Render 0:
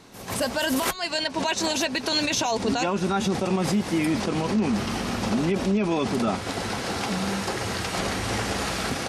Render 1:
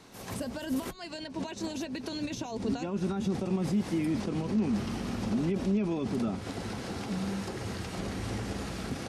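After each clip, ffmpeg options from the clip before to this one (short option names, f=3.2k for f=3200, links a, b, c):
-filter_complex "[0:a]acrossover=split=400[a][b];[b]acompressor=threshold=-36dB:ratio=10[c];[a][c]amix=inputs=2:normalize=0,volume=-4dB"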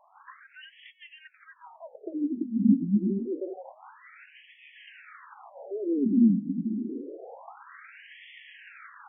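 -af "equalizer=f=220:w=1.4:g=13.5,afftfilt=real='re*between(b*sr/1024,230*pow(2500/230,0.5+0.5*sin(2*PI*0.27*pts/sr))/1.41,230*pow(2500/230,0.5+0.5*sin(2*PI*0.27*pts/sr))*1.41)':imag='im*between(b*sr/1024,230*pow(2500/230,0.5+0.5*sin(2*PI*0.27*pts/sr))/1.41,230*pow(2500/230,0.5+0.5*sin(2*PI*0.27*pts/sr))*1.41)':win_size=1024:overlap=0.75"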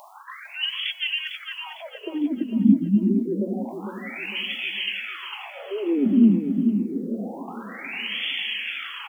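-af "areverse,acompressor=mode=upward:threshold=-38dB:ratio=2.5,areverse,aexciter=amount=8.9:drive=3.8:freq=2.4k,aecho=1:1:453|906|1359|1812:0.376|0.139|0.0515|0.019,volume=4.5dB"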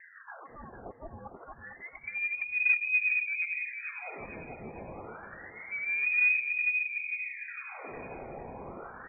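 -filter_complex "[0:a]acrossover=split=200|670|910[a][b][c][d];[b]asoftclip=type=tanh:threshold=-23dB[e];[a][e][c][d]amix=inputs=4:normalize=0,lowpass=f=2.3k:t=q:w=0.5098,lowpass=f=2.3k:t=q:w=0.6013,lowpass=f=2.3k:t=q:w=0.9,lowpass=f=2.3k:t=q:w=2.563,afreqshift=-2700,volume=-6.5dB"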